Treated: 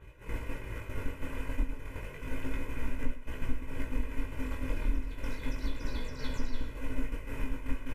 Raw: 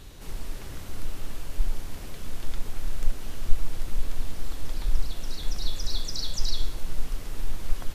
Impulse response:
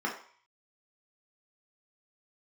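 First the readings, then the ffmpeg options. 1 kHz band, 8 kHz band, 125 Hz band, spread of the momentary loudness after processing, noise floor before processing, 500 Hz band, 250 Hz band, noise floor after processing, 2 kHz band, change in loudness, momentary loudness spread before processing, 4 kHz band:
-0.5 dB, no reading, -2.5 dB, 4 LU, -39 dBFS, +2.5 dB, +5.5 dB, -46 dBFS, +3.5 dB, -3.0 dB, 9 LU, -14.0 dB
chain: -filter_complex "[0:a]tremolo=f=260:d=0.519,highpass=f=42:p=1,highshelf=f=3100:t=q:w=3:g=-9.5,aecho=1:1:2:0.79,acrossover=split=2700[s0][s1];[s0]acompressor=mode=upward:threshold=0.0141:ratio=2.5[s2];[s1]alimiter=level_in=8.41:limit=0.0631:level=0:latency=1:release=205,volume=0.119[s3];[s2][s3]amix=inputs=2:normalize=0,acompressor=threshold=0.0251:ratio=8,agate=range=0.0224:threshold=0.0316:ratio=3:detection=peak,flanger=delay=16:depth=6.9:speed=0.32,aecho=1:1:105:0.2,asplit=2[s4][s5];[1:a]atrim=start_sample=2205,asetrate=70560,aresample=44100[s6];[s5][s6]afir=irnorm=-1:irlink=0,volume=0.126[s7];[s4][s7]amix=inputs=2:normalize=0,aresample=32000,aresample=44100,volume=4.73"

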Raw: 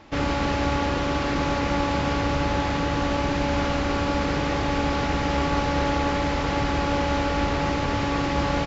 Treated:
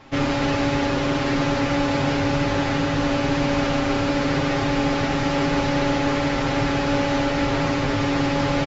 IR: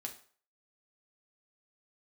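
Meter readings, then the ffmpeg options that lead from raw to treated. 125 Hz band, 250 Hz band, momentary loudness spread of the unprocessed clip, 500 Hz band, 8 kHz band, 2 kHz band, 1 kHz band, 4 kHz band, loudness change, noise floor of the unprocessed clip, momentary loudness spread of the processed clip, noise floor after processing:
+2.0 dB, +4.5 dB, 1 LU, +3.0 dB, no reading, +3.0 dB, 0.0 dB, +3.0 dB, +2.5 dB, -26 dBFS, 1 LU, -23 dBFS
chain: -af "aecho=1:1:7.5:0.97"

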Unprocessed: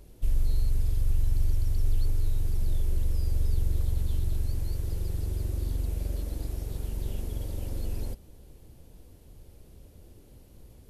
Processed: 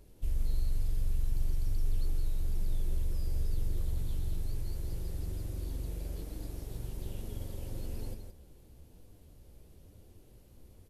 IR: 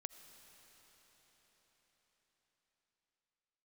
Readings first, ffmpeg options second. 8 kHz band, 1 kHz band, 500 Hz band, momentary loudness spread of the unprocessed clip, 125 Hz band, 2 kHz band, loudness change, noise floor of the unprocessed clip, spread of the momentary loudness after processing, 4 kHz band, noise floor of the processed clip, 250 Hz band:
-4.5 dB, -4.5 dB, -4.5 dB, 6 LU, -7.0 dB, -4.5 dB, -6.5 dB, -53 dBFS, 22 LU, -4.5 dB, -57 dBFS, -4.0 dB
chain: -filter_complex "[0:a]asplit=2[s0][s1];[s1]aecho=0:1:168:0.447[s2];[s0][s2]amix=inputs=2:normalize=0,flanger=delay=9.5:depth=7.9:regen=61:speed=1.1:shape=sinusoidal,volume=0.891"

